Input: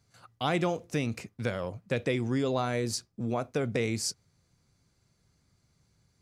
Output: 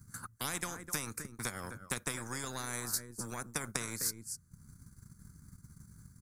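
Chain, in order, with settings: transient shaper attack +8 dB, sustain -11 dB; on a send: echo 0.255 s -21.5 dB; on the sum: vocal rider 2 s; EQ curve 210 Hz 0 dB, 670 Hz -27 dB, 970 Hz -12 dB, 1500 Hz -4 dB, 2800 Hz -29 dB, 9600 Hz +3 dB; spectral compressor 4:1

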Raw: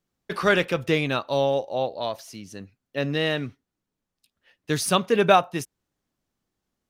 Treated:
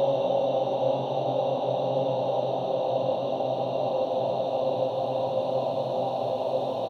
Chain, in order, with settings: harmonic-percussive split percussive -16 dB; frequency-shifting echo 0.109 s, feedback 55%, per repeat +46 Hz, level -10.5 dB; Paulstretch 38×, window 1.00 s, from 1.74; gain +1.5 dB

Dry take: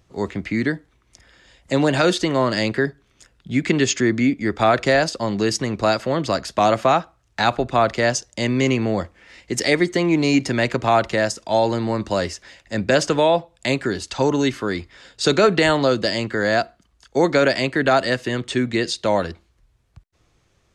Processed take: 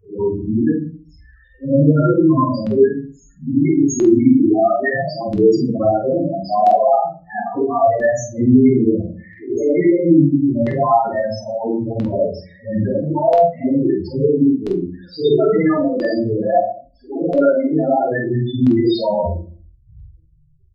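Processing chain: phase scrambler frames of 0.2 s; notches 60/120/180/240/300/360/420/480/540/600 Hz; in parallel at -1.5 dB: limiter -13.5 dBFS, peak gain reduction 9 dB; on the sum: loudest bins only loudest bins 4; LFO notch saw down 0.75 Hz 320–4000 Hz; doubler 47 ms -5 dB; on a send at -6 dB: reverb RT60 0.40 s, pre-delay 3 ms; on the sum: gain +2.5 dB

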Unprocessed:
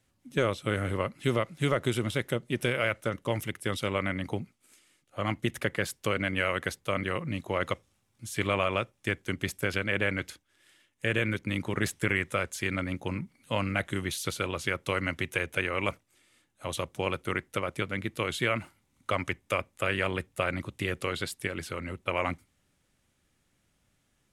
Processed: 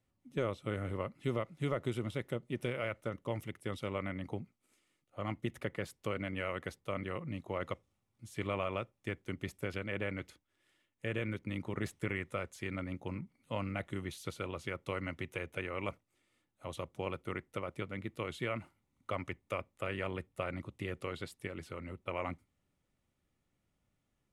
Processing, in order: high shelf 2400 Hz -9 dB; notch 1600 Hz, Q 8.9; gain -7 dB

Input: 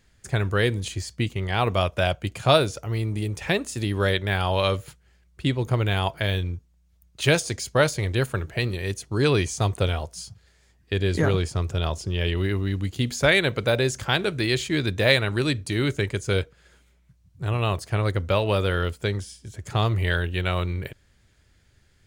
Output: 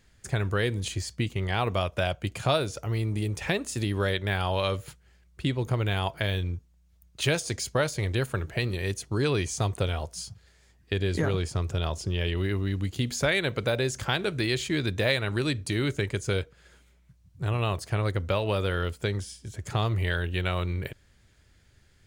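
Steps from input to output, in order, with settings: compressor 2:1, threshold -26 dBFS, peak gain reduction 8 dB

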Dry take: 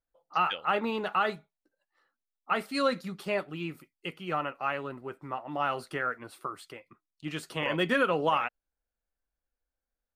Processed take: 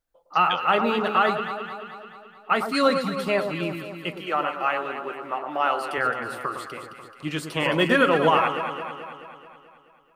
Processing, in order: 4.19–5.98 HPF 360 Hz 12 dB/oct; on a send: echo with dull and thin repeats by turns 0.108 s, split 1300 Hz, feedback 76%, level -6 dB; on the sum: gain +6.5 dB

